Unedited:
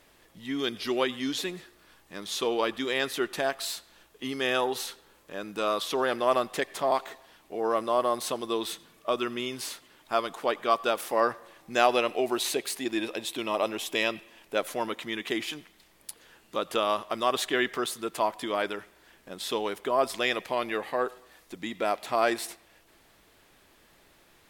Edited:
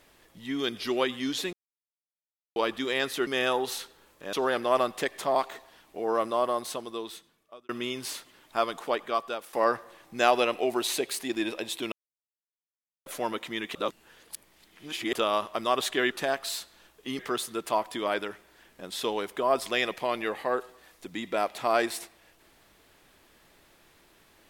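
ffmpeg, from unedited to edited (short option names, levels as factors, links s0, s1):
-filter_complex "[0:a]asplit=13[s0][s1][s2][s3][s4][s5][s6][s7][s8][s9][s10][s11][s12];[s0]atrim=end=1.53,asetpts=PTS-STARTPTS,afade=t=out:st=1.526:d=0.004:c=hsin[s13];[s1]atrim=start=1.53:end=2.56,asetpts=PTS-STARTPTS,volume=0[s14];[s2]atrim=start=2.56:end=3.272,asetpts=PTS-STARTPTS,afade=t=in:d=0.004:c=hsin[s15];[s3]atrim=start=4.348:end=5.412[s16];[s4]atrim=start=5.888:end=9.25,asetpts=PTS-STARTPTS,afade=t=out:st=1.902:d=1.46[s17];[s5]atrim=start=9.25:end=11.09,asetpts=PTS-STARTPTS,afade=t=in:d=0.004:c=hsin,afade=t=out:st=1.15:d=0.69:silence=0.199526[s18];[s6]atrim=start=11.09:end=13.48,asetpts=PTS-STARTPTS,afade=t=in:d=0.004:c=hsin:silence=0.199526,afade=t=out:st=2.386:d=0.004:c=hsin[s19];[s7]atrim=start=13.48:end=14.62,asetpts=PTS-STARTPTS,volume=0[s20];[s8]atrim=start=14.62:end=15.312,asetpts=PTS-STARTPTS,afade=t=in:d=0.004:c=hsin[s21];[s9]atrim=start=15.308:end=16.692,asetpts=PTS-STARTPTS,areverse[s22];[s10]atrim=start=16.688:end=17.672[s23];[s11]atrim=start=3.268:end=4.352[s24];[s12]atrim=start=17.668[s25];[s13][s14][s15]concat=n=3:v=0:a=1[s26];[s26][s16]acrossfade=d=0.004:c1=hsin:c2=hsin[s27];[s17][s18][s19][s20][s21]concat=n=5:v=0:a=1[s28];[s27][s28]acrossfade=d=0.004:c1=hsin:c2=hsin[s29];[s29][s22]acrossfade=d=0.004:c1=hsin:c2=hsin[s30];[s30][s23]acrossfade=d=0.004:c1=hsin:c2=hsin[s31];[s31][s24]acrossfade=d=0.004:c1=hsin:c2=hsin[s32];[s32][s25]acrossfade=d=0.004:c1=hsin:c2=hsin"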